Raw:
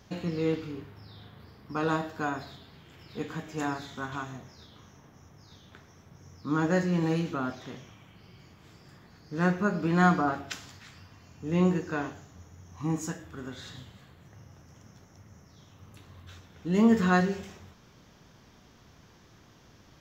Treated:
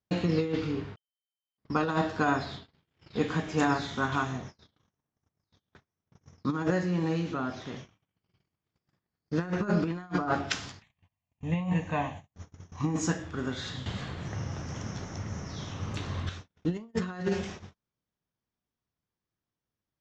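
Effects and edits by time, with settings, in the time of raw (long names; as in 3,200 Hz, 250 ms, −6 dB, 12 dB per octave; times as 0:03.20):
0:00.97–0:01.57: beep over 3,090 Hz −9 dBFS
0:06.70–0:09.33: downward compressor 1.5 to 1, threshold −48 dBFS
0:10.82–0:12.34: phaser with its sweep stopped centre 1,400 Hz, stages 6
0:13.86–0:16.29: clip gain +9.5 dB
whole clip: compressor whose output falls as the input rises −30 dBFS, ratio −0.5; low-pass filter 6,800 Hz 24 dB per octave; noise gate −41 dBFS, range −41 dB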